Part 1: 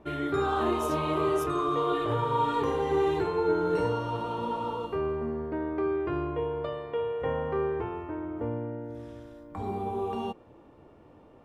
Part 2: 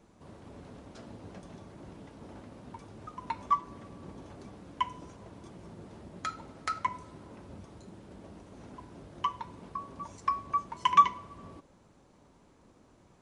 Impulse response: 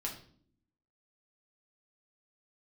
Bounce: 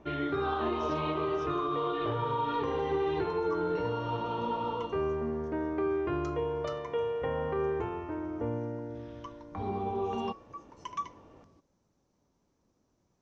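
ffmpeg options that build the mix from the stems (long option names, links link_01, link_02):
-filter_complex "[0:a]lowpass=frequency=3700:width=0.5412,lowpass=frequency=3700:width=1.3066,alimiter=limit=-21.5dB:level=0:latency=1:release=159,volume=-1dB[link_01];[1:a]tiltshelf=frequency=970:gain=3,volume=-15.5dB[link_02];[link_01][link_02]amix=inputs=2:normalize=0,lowpass=frequency=5900:width_type=q:width=4.4"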